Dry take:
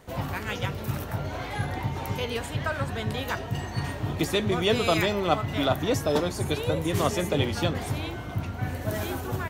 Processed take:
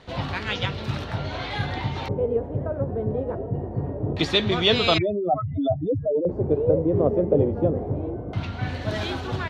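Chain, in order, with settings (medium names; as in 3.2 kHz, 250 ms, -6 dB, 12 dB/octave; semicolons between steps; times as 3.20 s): 4.98–6.29 s: spectral contrast enhancement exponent 3.9; LFO low-pass square 0.24 Hz 490–4000 Hz; trim +2 dB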